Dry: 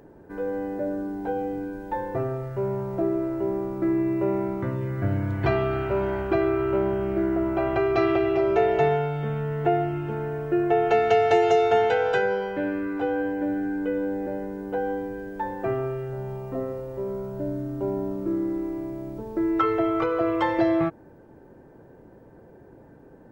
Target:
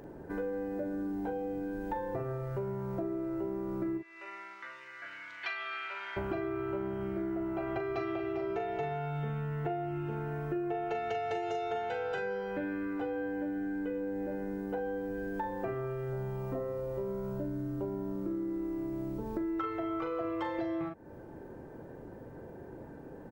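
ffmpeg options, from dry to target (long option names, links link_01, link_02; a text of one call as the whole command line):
ffmpeg -i in.wav -filter_complex "[0:a]asplit=3[link_01][link_02][link_03];[link_01]afade=type=out:start_time=3.97:duration=0.02[link_04];[link_02]asuperpass=centerf=3300:order=4:qfactor=0.77,afade=type=in:start_time=3.97:duration=0.02,afade=type=out:start_time=6.16:duration=0.02[link_05];[link_03]afade=type=in:start_time=6.16:duration=0.02[link_06];[link_04][link_05][link_06]amix=inputs=3:normalize=0,asplit=2[link_07][link_08];[link_08]adelay=40,volume=-6dB[link_09];[link_07][link_09]amix=inputs=2:normalize=0,acompressor=threshold=-35dB:ratio=6,volume=1.5dB" out.wav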